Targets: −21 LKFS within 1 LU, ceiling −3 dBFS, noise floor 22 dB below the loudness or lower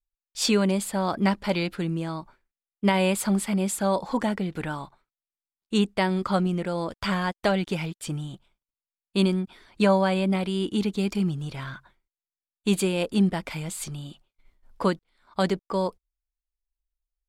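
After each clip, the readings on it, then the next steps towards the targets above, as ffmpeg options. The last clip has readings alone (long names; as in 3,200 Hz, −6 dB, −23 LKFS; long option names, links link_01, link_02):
integrated loudness −26.0 LKFS; sample peak −10.0 dBFS; target loudness −21.0 LKFS
→ -af "volume=5dB"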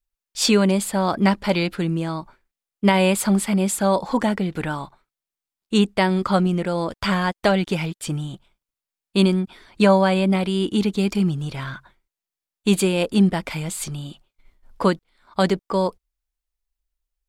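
integrated loudness −21.0 LKFS; sample peak −5.0 dBFS; background noise floor −90 dBFS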